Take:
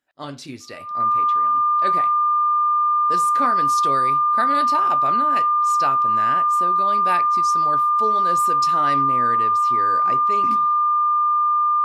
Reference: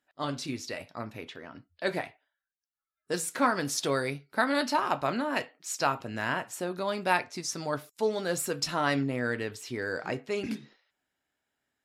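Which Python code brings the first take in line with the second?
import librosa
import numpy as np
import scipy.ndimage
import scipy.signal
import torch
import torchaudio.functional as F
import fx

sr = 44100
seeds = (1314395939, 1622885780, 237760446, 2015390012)

y = fx.notch(x, sr, hz=1200.0, q=30.0)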